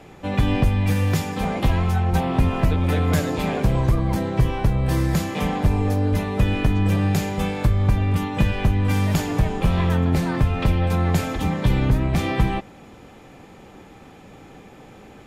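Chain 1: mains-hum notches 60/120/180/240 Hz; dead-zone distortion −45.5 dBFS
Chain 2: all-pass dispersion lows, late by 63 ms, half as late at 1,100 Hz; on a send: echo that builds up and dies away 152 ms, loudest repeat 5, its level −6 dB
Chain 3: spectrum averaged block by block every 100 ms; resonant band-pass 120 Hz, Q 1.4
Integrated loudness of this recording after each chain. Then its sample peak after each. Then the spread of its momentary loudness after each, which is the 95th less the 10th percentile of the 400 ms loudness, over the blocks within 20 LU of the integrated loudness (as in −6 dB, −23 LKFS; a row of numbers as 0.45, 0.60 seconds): −22.5, −17.0, −26.5 LKFS; −7.5, −1.5, −14.0 dBFS; 3, 6, 6 LU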